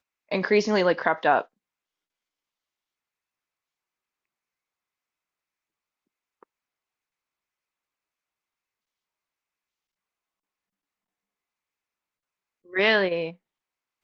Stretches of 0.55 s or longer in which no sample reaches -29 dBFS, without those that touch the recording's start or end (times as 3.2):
1.41–12.75